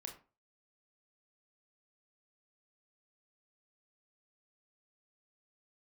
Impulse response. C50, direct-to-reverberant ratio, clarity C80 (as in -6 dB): 9.0 dB, 2.0 dB, 15.0 dB